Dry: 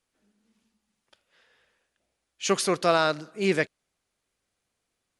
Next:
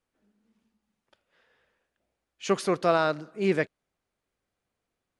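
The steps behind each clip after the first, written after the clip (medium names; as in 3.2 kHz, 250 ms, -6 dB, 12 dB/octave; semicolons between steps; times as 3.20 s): treble shelf 2.7 kHz -11 dB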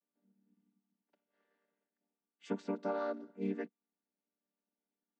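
vocoder on a held chord minor triad, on G3; compression, threshold -24 dBFS, peak gain reduction 7.5 dB; trim -8 dB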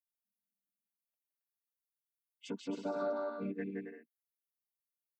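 expander on every frequency bin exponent 2; peak limiter -38 dBFS, peak gain reduction 11 dB; bouncing-ball echo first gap 170 ms, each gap 0.6×, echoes 5; trim +7 dB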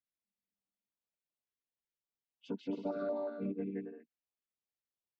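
distance through air 250 m; step-sequenced notch 5.5 Hz 920–2000 Hz; trim +2 dB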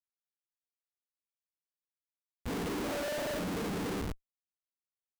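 phase randomisation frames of 50 ms; reverse bouncing-ball echo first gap 40 ms, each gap 1.25×, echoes 5; Schmitt trigger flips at -49.5 dBFS; trim +7 dB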